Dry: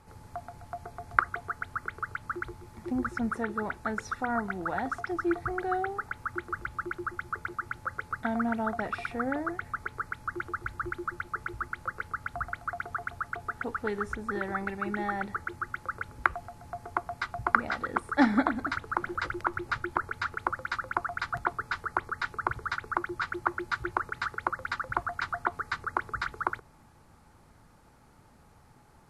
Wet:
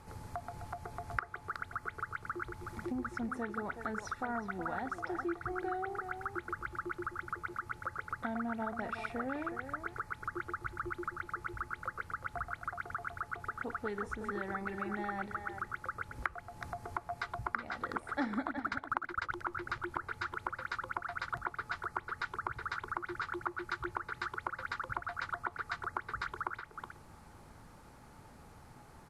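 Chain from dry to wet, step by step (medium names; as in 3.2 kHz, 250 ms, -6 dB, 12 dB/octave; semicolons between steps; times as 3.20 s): 18.47–19.32 s: transient shaper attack +9 dB, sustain -10 dB; compression 2.5:1, threshold -42 dBFS, peak gain reduction 18.5 dB; speakerphone echo 370 ms, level -7 dB; trim +2.5 dB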